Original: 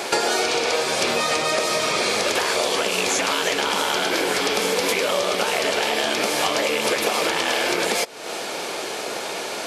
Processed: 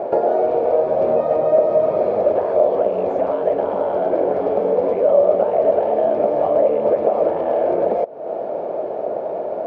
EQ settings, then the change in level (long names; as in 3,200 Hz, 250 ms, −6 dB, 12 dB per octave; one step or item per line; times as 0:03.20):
low-pass with resonance 620 Hz, resonance Q 4.9
low-shelf EQ 120 Hz +8.5 dB
−1.5 dB